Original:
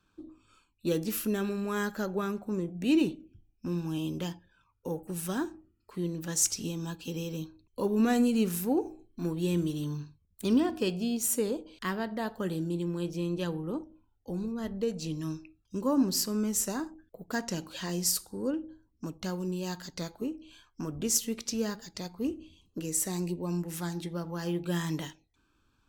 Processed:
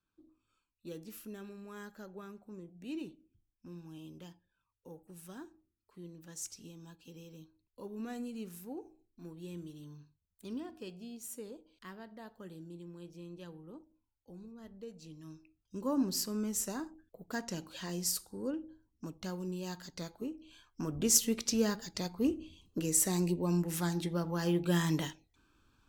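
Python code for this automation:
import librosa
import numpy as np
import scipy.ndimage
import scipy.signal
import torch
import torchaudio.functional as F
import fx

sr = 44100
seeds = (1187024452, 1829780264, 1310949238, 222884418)

y = fx.gain(x, sr, db=fx.line((15.2, -16.0), (15.9, -5.5), (20.35, -5.5), (21.15, 1.5)))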